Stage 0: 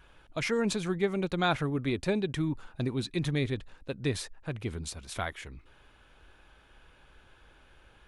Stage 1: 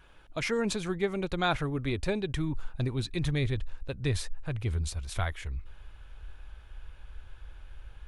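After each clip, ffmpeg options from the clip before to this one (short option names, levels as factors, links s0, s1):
-af "asubboost=boost=8:cutoff=82"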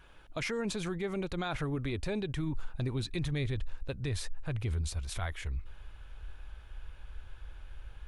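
-af "alimiter=level_in=1.26:limit=0.0631:level=0:latency=1:release=49,volume=0.794"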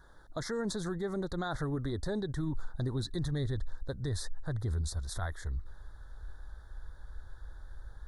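-af "asuperstop=centerf=2600:order=8:qfactor=1.5"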